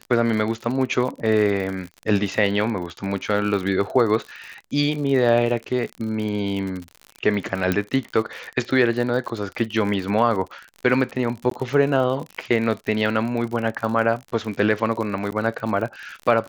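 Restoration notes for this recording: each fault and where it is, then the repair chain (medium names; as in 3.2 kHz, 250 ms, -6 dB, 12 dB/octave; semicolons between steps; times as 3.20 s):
crackle 54 per s -28 dBFS
7.72 s: pop -8 dBFS
11.50–11.51 s: dropout 13 ms
15.31–15.32 s: dropout 9.8 ms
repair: de-click; interpolate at 11.50 s, 13 ms; interpolate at 15.31 s, 9.8 ms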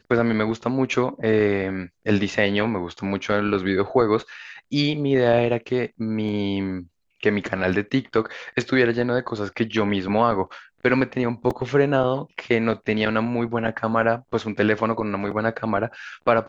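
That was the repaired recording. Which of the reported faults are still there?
7.72 s: pop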